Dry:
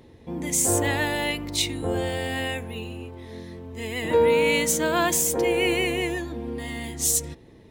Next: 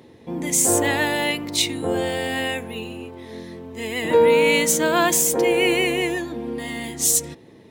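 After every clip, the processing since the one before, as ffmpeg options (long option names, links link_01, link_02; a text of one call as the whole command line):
ffmpeg -i in.wav -af "highpass=140,volume=4dB" out.wav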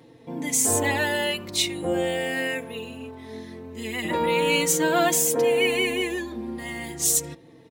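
ffmpeg -i in.wav -filter_complex "[0:a]asplit=2[link_01][link_02];[link_02]adelay=3.9,afreqshift=-0.4[link_03];[link_01][link_03]amix=inputs=2:normalize=1" out.wav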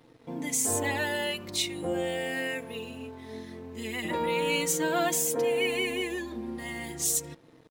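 ffmpeg -i in.wav -filter_complex "[0:a]asplit=2[link_01][link_02];[link_02]acompressor=threshold=-31dB:ratio=6,volume=-1dB[link_03];[link_01][link_03]amix=inputs=2:normalize=0,aeval=exprs='sgn(val(0))*max(abs(val(0))-0.00299,0)':channel_layout=same,volume=-7.5dB" out.wav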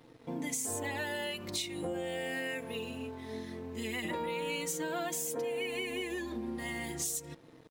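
ffmpeg -i in.wav -af "acompressor=threshold=-33dB:ratio=6" out.wav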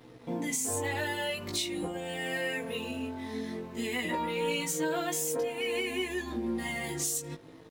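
ffmpeg -i in.wav -filter_complex "[0:a]asplit=2[link_01][link_02];[link_02]asoftclip=type=tanh:threshold=-32.5dB,volume=-4dB[link_03];[link_01][link_03]amix=inputs=2:normalize=0,flanger=delay=16:depth=3.7:speed=0.49,volume=3.5dB" out.wav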